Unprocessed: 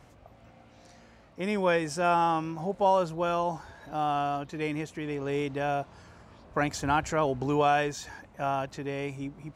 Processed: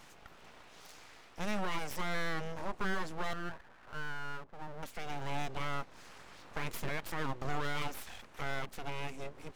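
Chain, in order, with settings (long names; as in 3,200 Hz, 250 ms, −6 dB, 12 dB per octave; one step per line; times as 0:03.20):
0:06.89–0:07.45: high-pass filter 300 Hz 6 dB per octave
brickwall limiter −20.5 dBFS, peak gain reduction 7 dB
0:03.33–0:04.83: transistor ladder low-pass 1,000 Hz, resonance 40%
full-wave rectification
one half of a high-frequency compander encoder only
level −3 dB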